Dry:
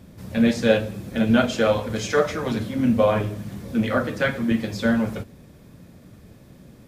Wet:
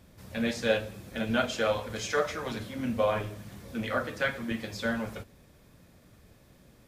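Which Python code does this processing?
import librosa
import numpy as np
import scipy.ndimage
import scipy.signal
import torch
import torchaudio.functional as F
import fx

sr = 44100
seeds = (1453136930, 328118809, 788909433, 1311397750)

y = fx.peak_eq(x, sr, hz=190.0, db=-8.5, octaves=2.6)
y = y * 10.0 ** (-4.5 / 20.0)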